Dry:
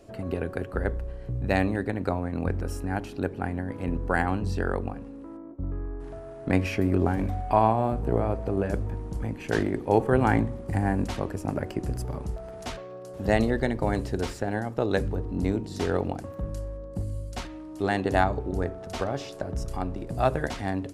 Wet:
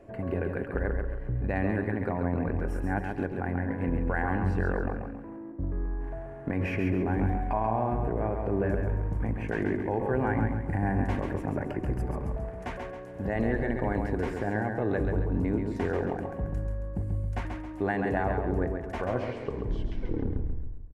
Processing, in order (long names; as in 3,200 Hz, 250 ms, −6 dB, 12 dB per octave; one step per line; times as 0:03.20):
turntable brake at the end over 1.98 s
high shelf with overshoot 2,800 Hz −13 dB, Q 1.5
notch filter 1,300 Hz, Q 6.9
brickwall limiter −18 dBFS, peak gain reduction 11 dB
repeating echo 136 ms, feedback 40%, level −5 dB